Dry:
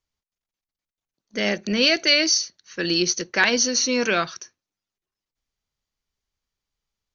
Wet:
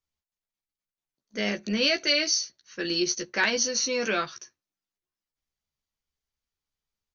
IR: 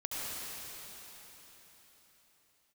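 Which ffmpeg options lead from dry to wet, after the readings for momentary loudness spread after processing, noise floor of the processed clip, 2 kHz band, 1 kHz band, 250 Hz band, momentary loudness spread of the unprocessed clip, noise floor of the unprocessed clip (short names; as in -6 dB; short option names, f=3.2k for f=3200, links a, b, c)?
11 LU, under -85 dBFS, -5.5 dB, -5.0 dB, -6.0 dB, 12 LU, under -85 dBFS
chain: -filter_complex "[0:a]asplit=2[a][b];[b]adelay=14,volume=-5dB[c];[a][c]amix=inputs=2:normalize=0,volume=-6.5dB"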